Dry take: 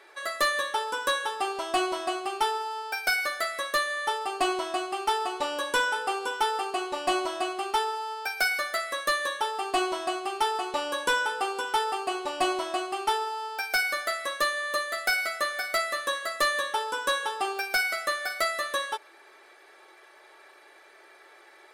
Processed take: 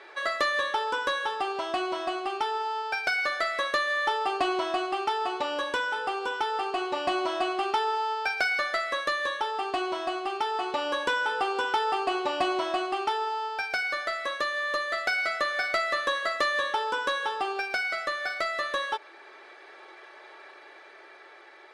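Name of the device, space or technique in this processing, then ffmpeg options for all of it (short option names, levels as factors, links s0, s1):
AM radio: -af "highpass=110,lowpass=4500,acompressor=threshold=0.0447:ratio=6,asoftclip=type=tanh:threshold=0.0944,tremolo=f=0.25:d=0.31,volume=1.88"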